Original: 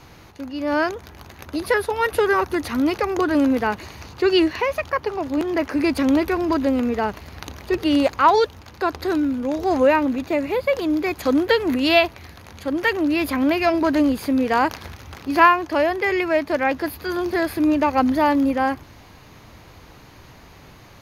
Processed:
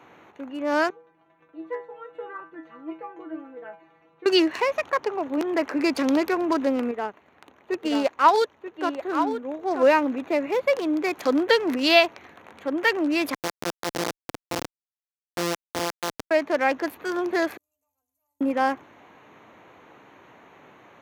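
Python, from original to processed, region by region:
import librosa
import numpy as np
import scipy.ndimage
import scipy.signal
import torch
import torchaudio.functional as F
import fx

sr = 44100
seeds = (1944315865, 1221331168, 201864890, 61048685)

y = fx.chain(x, sr, fx.spacing_loss(db_at_10k=24),
    fx.stiff_resonator(f0_hz=160.0, decay_s=0.35, stiffness=0.002), at=(0.9, 4.26))
y = fx.chain(y, sr, fx.echo_single(ms=934, db=-6.5),
    fx.upward_expand(threshold_db=-34.0, expansion=1.5), at=(6.91, 9.83))
y = fx.chain(y, sr, fx.sample_sort(block=256),
    fx.lowpass(hz=2000.0, slope=6),
    fx.schmitt(flips_db=-14.5), at=(13.34, 16.31))
y = fx.chain(y, sr, fx.cheby2_bandstop(low_hz=150.0, high_hz=3700.0, order=4, stop_db=60),
    fx.stiff_resonator(f0_hz=89.0, decay_s=0.32, stiffness=0.008),
    fx.spectral_comp(ratio=2.0), at=(17.57, 18.41))
y = fx.wiener(y, sr, points=9)
y = scipy.signal.sosfilt(scipy.signal.butter(2, 290.0, 'highpass', fs=sr, output='sos'), y)
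y = fx.dynamic_eq(y, sr, hz=5400.0, q=1.7, threshold_db=-49.0, ratio=4.0, max_db=6)
y = y * 10.0 ** (-1.0 / 20.0)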